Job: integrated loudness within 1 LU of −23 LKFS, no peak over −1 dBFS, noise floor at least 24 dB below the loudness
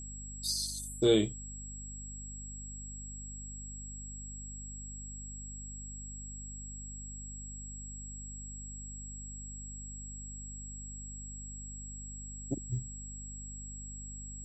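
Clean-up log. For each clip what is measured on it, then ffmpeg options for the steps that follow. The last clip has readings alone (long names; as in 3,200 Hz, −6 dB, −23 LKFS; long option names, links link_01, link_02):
mains hum 50 Hz; hum harmonics up to 250 Hz; level of the hum −44 dBFS; interfering tone 7,700 Hz; level of the tone −45 dBFS; integrated loudness −39.0 LKFS; sample peak −13.0 dBFS; target loudness −23.0 LKFS
→ -af "bandreject=frequency=50:width_type=h:width=4,bandreject=frequency=100:width_type=h:width=4,bandreject=frequency=150:width_type=h:width=4,bandreject=frequency=200:width_type=h:width=4,bandreject=frequency=250:width_type=h:width=4"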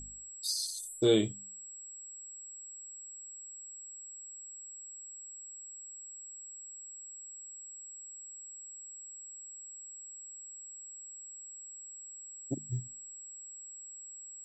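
mains hum none found; interfering tone 7,700 Hz; level of the tone −45 dBFS
→ -af "bandreject=frequency=7700:width=30"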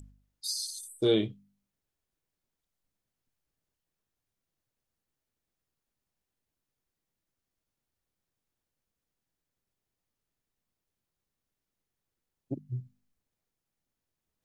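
interfering tone none found; integrated loudness −32.5 LKFS; sample peak −13.5 dBFS; target loudness −23.0 LKFS
→ -af "volume=9.5dB"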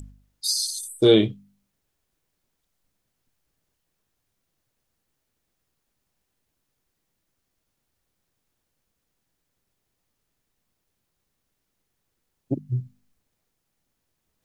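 integrated loudness −23.0 LKFS; sample peak −4.0 dBFS; background noise floor −78 dBFS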